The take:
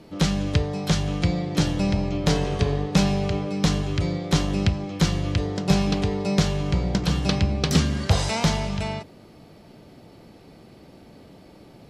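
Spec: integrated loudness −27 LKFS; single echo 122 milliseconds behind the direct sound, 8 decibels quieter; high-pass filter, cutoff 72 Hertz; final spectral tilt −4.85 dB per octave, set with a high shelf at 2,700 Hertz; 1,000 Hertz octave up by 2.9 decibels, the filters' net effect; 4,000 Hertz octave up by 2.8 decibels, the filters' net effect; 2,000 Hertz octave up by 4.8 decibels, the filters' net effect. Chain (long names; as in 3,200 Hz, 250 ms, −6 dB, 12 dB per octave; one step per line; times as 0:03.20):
high-pass filter 72 Hz
parametric band 1,000 Hz +3 dB
parametric band 2,000 Hz +6 dB
high-shelf EQ 2,700 Hz −5.5 dB
parametric band 4,000 Hz +6 dB
single-tap delay 122 ms −8 dB
level −4.5 dB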